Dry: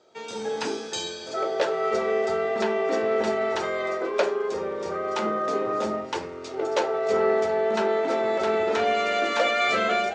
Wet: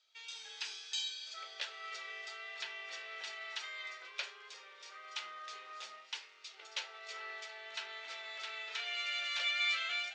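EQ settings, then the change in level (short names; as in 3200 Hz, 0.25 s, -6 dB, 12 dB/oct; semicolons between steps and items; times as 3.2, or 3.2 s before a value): ladder band-pass 3800 Hz, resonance 25%; +5.5 dB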